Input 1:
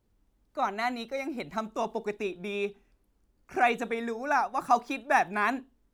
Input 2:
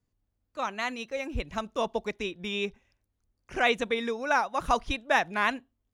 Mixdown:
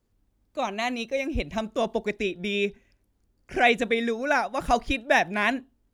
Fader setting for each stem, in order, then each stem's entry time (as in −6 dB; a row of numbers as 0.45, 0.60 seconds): −2.5, +2.5 decibels; 0.00, 0.00 seconds